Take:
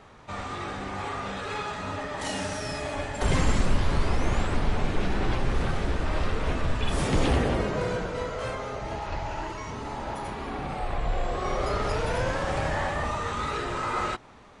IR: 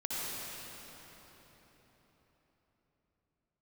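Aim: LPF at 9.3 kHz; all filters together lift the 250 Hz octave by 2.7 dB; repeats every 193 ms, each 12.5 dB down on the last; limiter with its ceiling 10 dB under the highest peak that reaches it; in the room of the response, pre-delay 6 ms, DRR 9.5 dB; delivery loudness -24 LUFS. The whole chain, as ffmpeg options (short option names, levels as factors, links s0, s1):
-filter_complex "[0:a]lowpass=9300,equalizer=f=250:t=o:g=3.5,alimiter=limit=0.1:level=0:latency=1,aecho=1:1:193|386|579:0.237|0.0569|0.0137,asplit=2[s0][s1];[1:a]atrim=start_sample=2205,adelay=6[s2];[s1][s2]afir=irnorm=-1:irlink=0,volume=0.178[s3];[s0][s3]amix=inputs=2:normalize=0,volume=2.11"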